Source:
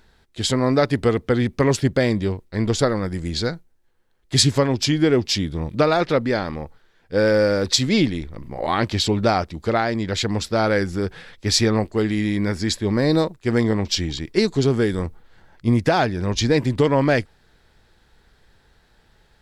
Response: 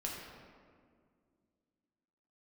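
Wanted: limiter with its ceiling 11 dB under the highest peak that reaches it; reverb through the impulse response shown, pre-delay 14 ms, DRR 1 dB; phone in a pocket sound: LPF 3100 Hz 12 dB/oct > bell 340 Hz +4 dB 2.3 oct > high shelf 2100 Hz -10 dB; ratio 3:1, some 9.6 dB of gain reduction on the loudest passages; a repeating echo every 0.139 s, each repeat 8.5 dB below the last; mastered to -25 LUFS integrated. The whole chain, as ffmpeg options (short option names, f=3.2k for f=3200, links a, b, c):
-filter_complex "[0:a]acompressor=threshold=-26dB:ratio=3,alimiter=limit=-23dB:level=0:latency=1,aecho=1:1:139|278|417|556:0.376|0.143|0.0543|0.0206,asplit=2[a][b];[1:a]atrim=start_sample=2205,adelay=14[c];[b][c]afir=irnorm=-1:irlink=0,volume=-2dB[d];[a][d]amix=inputs=2:normalize=0,lowpass=3.1k,equalizer=f=340:t=o:w=2.3:g=4,highshelf=f=2.1k:g=-10,volume=2dB"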